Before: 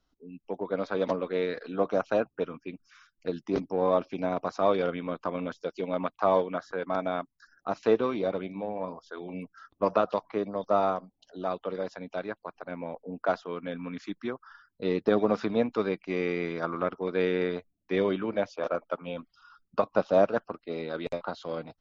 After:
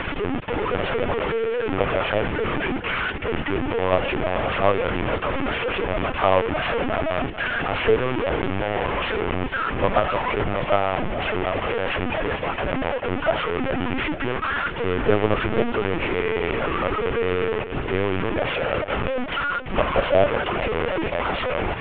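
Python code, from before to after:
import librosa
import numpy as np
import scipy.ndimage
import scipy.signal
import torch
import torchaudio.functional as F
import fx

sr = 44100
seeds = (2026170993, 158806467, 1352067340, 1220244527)

p1 = fx.delta_mod(x, sr, bps=16000, step_db=-21.5)
p2 = fx.level_steps(p1, sr, step_db=11)
p3 = p1 + F.gain(torch.from_numpy(p2), -1.0).numpy()
p4 = scipy.signal.sosfilt(scipy.signal.butter(2, 77.0, 'highpass', fs=sr, output='sos'), p3)
p5 = p4 + fx.echo_feedback(p4, sr, ms=437, feedback_pct=37, wet_db=-12.0, dry=0)
y = fx.lpc_vocoder(p5, sr, seeds[0], excitation='pitch_kept', order=16)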